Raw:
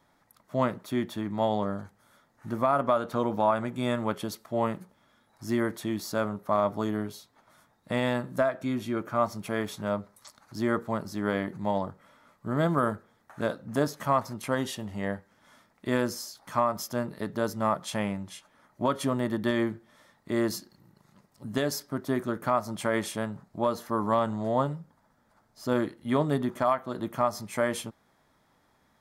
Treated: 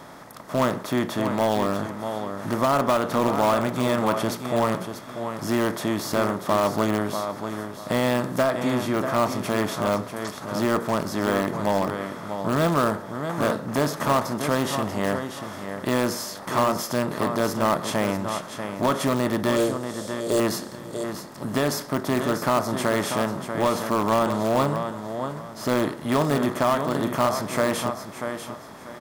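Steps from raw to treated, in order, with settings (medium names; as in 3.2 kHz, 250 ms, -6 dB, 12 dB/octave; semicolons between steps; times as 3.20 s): spectral levelling over time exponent 0.6; 19.56–20.40 s: graphic EQ 125/250/500/1000/2000/4000/8000 Hz -3/-7/+12/-9/-10/+5/+12 dB; feedback delay 640 ms, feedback 26%, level -9 dB; in parallel at -11 dB: integer overflow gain 16.5 dB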